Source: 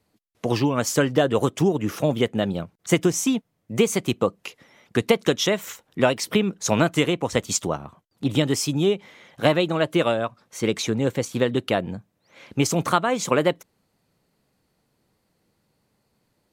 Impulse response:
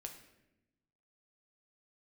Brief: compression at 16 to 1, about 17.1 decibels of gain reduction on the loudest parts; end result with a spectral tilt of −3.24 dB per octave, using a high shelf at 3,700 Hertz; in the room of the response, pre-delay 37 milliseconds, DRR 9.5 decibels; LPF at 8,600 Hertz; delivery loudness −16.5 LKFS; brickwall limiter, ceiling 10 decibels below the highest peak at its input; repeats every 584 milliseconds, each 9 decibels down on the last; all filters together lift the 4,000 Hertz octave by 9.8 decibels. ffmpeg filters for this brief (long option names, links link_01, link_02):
-filter_complex "[0:a]lowpass=8600,highshelf=frequency=3700:gain=9,equalizer=frequency=4000:width_type=o:gain=7.5,acompressor=threshold=-29dB:ratio=16,alimiter=limit=-23dB:level=0:latency=1,aecho=1:1:584|1168|1752|2336:0.355|0.124|0.0435|0.0152,asplit=2[link_01][link_02];[1:a]atrim=start_sample=2205,adelay=37[link_03];[link_02][link_03]afir=irnorm=-1:irlink=0,volume=-5.5dB[link_04];[link_01][link_04]amix=inputs=2:normalize=0,volume=18.5dB"